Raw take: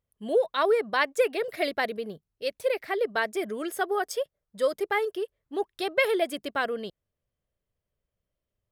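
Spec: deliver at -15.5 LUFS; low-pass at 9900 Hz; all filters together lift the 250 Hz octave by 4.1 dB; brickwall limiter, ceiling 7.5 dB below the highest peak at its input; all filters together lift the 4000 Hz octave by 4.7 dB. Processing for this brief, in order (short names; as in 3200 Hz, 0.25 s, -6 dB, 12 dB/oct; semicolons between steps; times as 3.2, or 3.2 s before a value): LPF 9900 Hz; bell 250 Hz +6 dB; bell 4000 Hz +6 dB; gain +12.5 dB; limiter -4 dBFS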